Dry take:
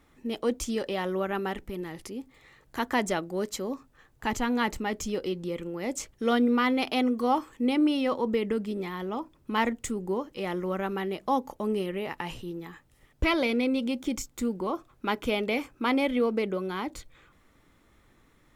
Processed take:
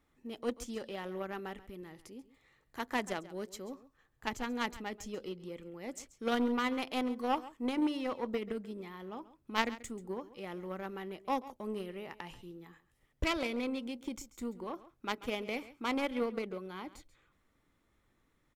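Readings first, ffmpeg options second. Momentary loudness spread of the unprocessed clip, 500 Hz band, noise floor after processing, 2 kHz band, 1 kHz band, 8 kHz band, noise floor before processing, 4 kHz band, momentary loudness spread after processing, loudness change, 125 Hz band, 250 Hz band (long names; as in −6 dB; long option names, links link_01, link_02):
11 LU, −9.0 dB, −74 dBFS, −7.5 dB, −7.5 dB, −10.0 dB, −63 dBFS, −7.0 dB, 14 LU, −8.5 dB, −10.0 dB, −9.5 dB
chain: -af "aeval=exprs='0.266*(cos(1*acos(clip(val(0)/0.266,-1,1)))-cos(1*PI/2))+0.0668*(cos(3*acos(clip(val(0)/0.266,-1,1)))-cos(3*PI/2))+0.00188*(cos(4*acos(clip(val(0)/0.266,-1,1)))-cos(4*PI/2))':channel_layout=same,aecho=1:1:136:0.141"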